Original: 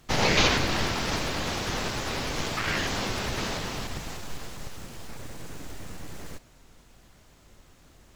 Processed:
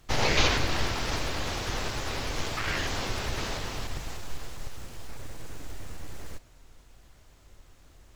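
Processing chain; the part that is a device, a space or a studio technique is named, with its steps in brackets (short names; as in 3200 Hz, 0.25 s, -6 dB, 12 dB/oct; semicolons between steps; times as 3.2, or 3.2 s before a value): low shelf boost with a cut just above (low shelf 100 Hz +6.5 dB; bell 190 Hz -6 dB 0.87 oct); gain -2.5 dB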